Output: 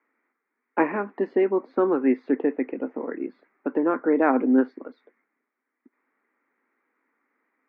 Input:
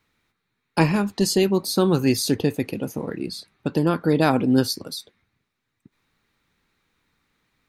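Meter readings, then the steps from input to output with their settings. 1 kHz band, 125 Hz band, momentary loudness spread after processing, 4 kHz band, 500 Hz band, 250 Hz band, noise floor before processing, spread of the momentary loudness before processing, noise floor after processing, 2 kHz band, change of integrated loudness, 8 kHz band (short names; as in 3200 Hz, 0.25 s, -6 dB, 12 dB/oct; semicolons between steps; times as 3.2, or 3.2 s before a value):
-0.5 dB, under -20 dB, 12 LU, under -30 dB, -0.5 dB, -2.0 dB, -78 dBFS, 11 LU, -82 dBFS, -2.0 dB, -2.0 dB, under -40 dB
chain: Chebyshev band-pass 250–2100 Hz, order 4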